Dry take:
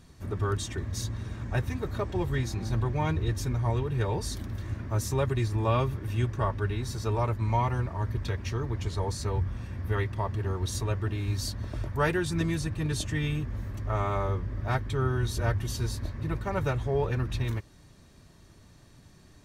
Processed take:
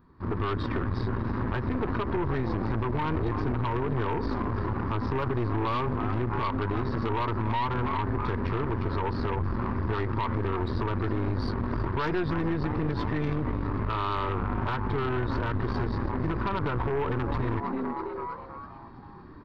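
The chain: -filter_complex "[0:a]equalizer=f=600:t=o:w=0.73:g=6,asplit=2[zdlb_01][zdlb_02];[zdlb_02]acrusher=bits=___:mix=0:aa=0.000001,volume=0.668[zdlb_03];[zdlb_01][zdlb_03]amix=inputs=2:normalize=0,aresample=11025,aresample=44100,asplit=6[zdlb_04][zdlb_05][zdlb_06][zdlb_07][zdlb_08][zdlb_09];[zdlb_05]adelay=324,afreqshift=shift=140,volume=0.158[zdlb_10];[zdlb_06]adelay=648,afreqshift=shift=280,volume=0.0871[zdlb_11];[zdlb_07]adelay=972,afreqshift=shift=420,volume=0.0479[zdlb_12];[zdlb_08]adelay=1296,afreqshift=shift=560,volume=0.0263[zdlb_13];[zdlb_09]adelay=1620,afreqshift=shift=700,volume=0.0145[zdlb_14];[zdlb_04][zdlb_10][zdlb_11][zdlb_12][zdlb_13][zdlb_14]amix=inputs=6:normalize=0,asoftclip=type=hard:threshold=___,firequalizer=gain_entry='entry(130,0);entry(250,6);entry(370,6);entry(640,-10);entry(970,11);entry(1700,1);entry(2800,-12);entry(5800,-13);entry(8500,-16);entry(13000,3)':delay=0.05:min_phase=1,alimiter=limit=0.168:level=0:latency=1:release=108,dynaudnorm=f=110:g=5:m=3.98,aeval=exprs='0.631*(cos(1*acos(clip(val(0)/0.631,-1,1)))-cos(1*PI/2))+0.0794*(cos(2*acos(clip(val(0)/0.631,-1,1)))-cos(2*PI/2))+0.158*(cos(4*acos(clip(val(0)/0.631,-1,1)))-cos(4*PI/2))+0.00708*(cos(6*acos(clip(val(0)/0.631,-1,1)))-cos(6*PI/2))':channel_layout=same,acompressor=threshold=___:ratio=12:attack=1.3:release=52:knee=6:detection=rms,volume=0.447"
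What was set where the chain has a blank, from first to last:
6, 0.266, 0.178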